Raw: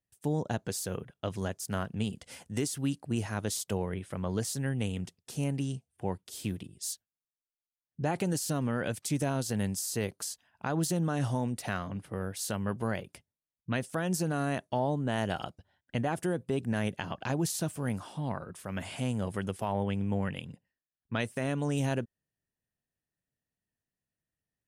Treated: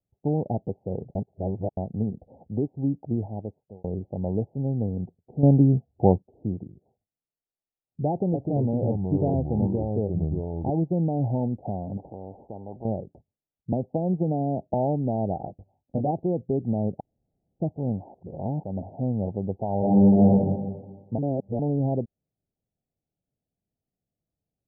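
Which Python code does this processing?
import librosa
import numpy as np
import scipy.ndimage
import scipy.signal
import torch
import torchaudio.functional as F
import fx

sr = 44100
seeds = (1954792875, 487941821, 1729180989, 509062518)

y = fx.echo_pitch(x, sr, ms=224, semitones=-4, count=2, db_per_echo=-3.0, at=(8.11, 10.7))
y = fx.spectral_comp(y, sr, ratio=4.0, at=(11.97, 12.85))
y = fx.band_squash(y, sr, depth_pct=100, at=(13.72, 14.74))
y = fx.doubler(y, sr, ms=20.0, db=-5.0, at=(15.46, 16.11))
y = fx.reverb_throw(y, sr, start_s=19.78, length_s=0.57, rt60_s=1.3, drr_db=-8.5)
y = fx.edit(y, sr, fx.reverse_span(start_s=1.15, length_s=0.62),
    fx.fade_out_span(start_s=3.07, length_s=0.77),
    fx.clip_gain(start_s=5.43, length_s=0.79, db=10.0),
    fx.room_tone_fill(start_s=17.0, length_s=0.6),
    fx.reverse_span(start_s=18.14, length_s=0.49),
    fx.reverse_span(start_s=21.18, length_s=0.41), tone=tone)
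y = scipy.signal.sosfilt(scipy.signal.butter(16, 840.0, 'lowpass', fs=sr, output='sos'), y)
y = y * librosa.db_to_amplitude(5.5)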